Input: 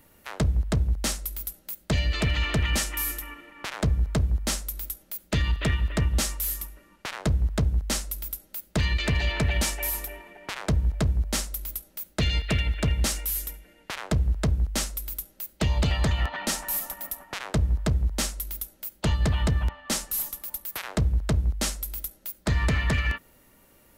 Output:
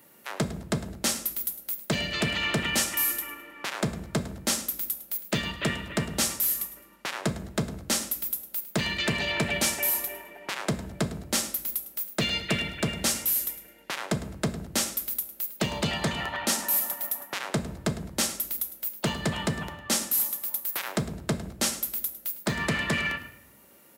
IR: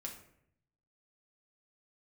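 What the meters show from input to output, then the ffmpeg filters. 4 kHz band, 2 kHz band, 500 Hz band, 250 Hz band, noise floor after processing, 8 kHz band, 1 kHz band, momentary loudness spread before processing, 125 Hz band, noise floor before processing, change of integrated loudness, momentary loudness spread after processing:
+2.0 dB, +2.0 dB, +1.5 dB, +0.5 dB, -55 dBFS, +3.0 dB, +1.5 dB, 10 LU, -8.5 dB, -59 dBFS, -0.5 dB, 8 LU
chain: -filter_complex "[0:a]highpass=200,asplit=4[a][b][c][d];[b]adelay=105,afreqshift=30,volume=-15dB[e];[c]adelay=210,afreqshift=60,volume=-25.5dB[f];[d]adelay=315,afreqshift=90,volume=-35.9dB[g];[a][e][f][g]amix=inputs=4:normalize=0,asplit=2[h][i];[1:a]atrim=start_sample=2205,lowshelf=f=210:g=5,highshelf=f=8k:g=8.5[j];[i][j]afir=irnorm=-1:irlink=0,volume=-2dB[k];[h][k]amix=inputs=2:normalize=0,volume=-2dB"

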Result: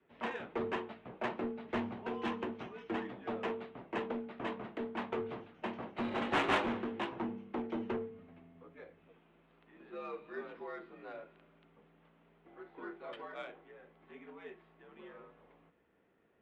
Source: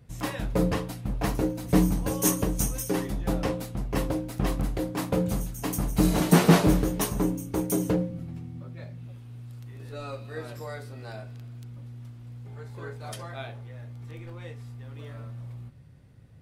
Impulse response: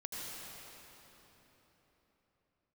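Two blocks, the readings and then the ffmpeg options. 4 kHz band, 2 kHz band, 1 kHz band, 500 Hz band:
-9.0 dB, -4.0 dB, -5.5 dB, -9.0 dB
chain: -filter_complex "[0:a]aemphasis=mode=production:type=50kf,highpass=f=340:t=q:w=0.5412,highpass=f=340:t=q:w=1.307,lowpass=f=3.4k:t=q:w=0.5176,lowpass=f=3.4k:t=q:w=0.7071,lowpass=f=3.4k:t=q:w=1.932,afreqshift=-76,acrossover=split=630[a][b];[a]asoftclip=type=tanh:threshold=-29.5dB[c];[b]adynamicsmooth=sensitivity=2.5:basefreq=2.6k[d];[c][d]amix=inputs=2:normalize=0,adynamicequalizer=threshold=0.00251:dfrequency=550:dqfactor=3.2:tfrequency=550:tqfactor=3.2:attack=5:release=100:ratio=0.375:range=2.5:mode=cutabove:tftype=bell,volume=-3.5dB"

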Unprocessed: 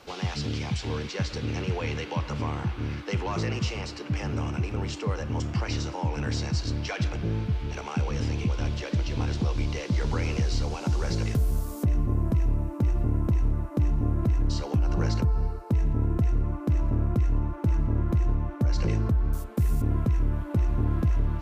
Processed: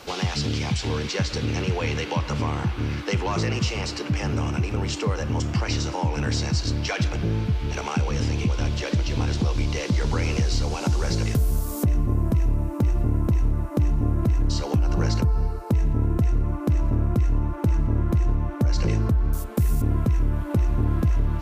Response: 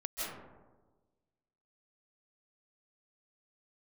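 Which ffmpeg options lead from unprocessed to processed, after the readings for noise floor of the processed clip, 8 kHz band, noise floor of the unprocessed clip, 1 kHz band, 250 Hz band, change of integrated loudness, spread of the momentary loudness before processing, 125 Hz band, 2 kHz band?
-32 dBFS, n/a, -39 dBFS, +4.5 dB, +4.0 dB, +3.5 dB, 5 LU, +3.5 dB, +5.0 dB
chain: -filter_complex "[0:a]highshelf=f=5.3k:g=5.5,asplit=2[a][b];[b]acompressor=threshold=-32dB:ratio=6,volume=2.5dB[c];[a][c]amix=inputs=2:normalize=0"

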